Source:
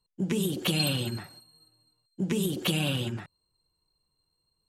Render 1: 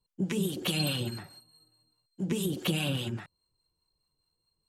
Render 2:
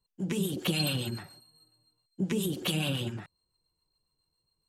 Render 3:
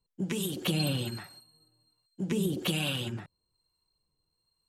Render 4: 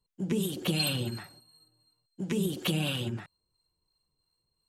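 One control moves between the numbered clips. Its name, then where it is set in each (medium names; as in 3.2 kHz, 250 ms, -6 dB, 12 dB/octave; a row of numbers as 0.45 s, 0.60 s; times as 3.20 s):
harmonic tremolo, rate: 4.8 Hz, 7.2 Hz, 1.2 Hz, 2.9 Hz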